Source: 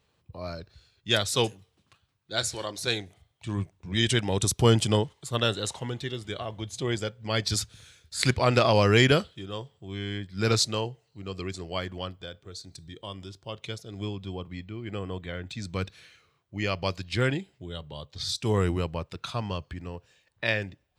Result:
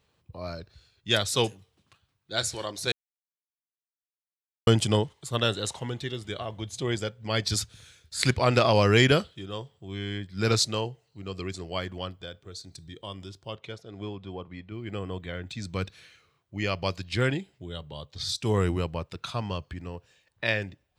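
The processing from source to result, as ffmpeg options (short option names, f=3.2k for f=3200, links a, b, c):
-filter_complex "[0:a]asettb=1/sr,asplit=3[a][b][c];[a]atrim=end=13.564[d];[b]atrim=start=13.56:end=14.72,asetpts=PTS-STARTPTS,afade=t=in:d=0.004:c=qsin,afade=t=out:st=1.156:d=0.004:c=qsin,asplit=2[e][f];[f]highpass=f=720:p=1,volume=9dB,asoftclip=type=tanh:threshold=-20.5dB[g];[e][g]amix=inputs=2:normalize=0,lowpass=f=1.1k:p=1,volume=-6dB[h];[c]atrim=start=14.716[i];[d][h]acrossfade=d=0.004:c1=hsin:c2=qsin[j];[j][i]acrossfade=d=0.004:c1=qsin:c2=hsin,asplit=3[k][l][m];[k]atrim=end=2.92,asetpts=PTS-STARTPTS,afade=t=out:st=2.916:d=0.004:c=hsin[n];[l]atrim=start=2.92:end=4.67,asetpts=PTS-STARTPTS,volume=0[o];[m]atrim=start=4.67,asetpts=PTS-STARTPTS,afade=t=in:d=0.004:c=hsin[p];[n][o][p]concat=n=3:v=0:a=1"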